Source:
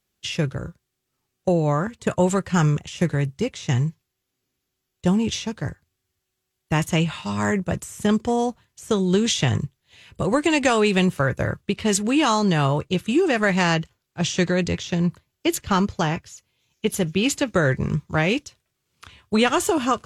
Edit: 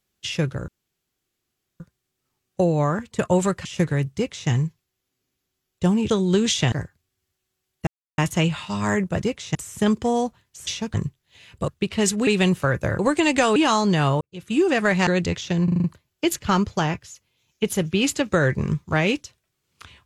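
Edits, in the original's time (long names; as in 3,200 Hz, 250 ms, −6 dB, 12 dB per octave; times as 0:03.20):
0:00.68: splice in room tone 1.12 s
0:02.53–0:02.87: remove
0:03.38–0:03.71: duplicate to 0:07.78
0:05.32–0:05.59: swap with 0:08.90–0:09.52
0:06.74: splice in silence 0.31 s
0:10.26–0:10.83: swap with 0:11.55–0:12.14
0:12.79–0:13.15: fade in quadratic
0:13.65–0:14.49: remove
0:15.06: stutter 0.04 s, 6 plays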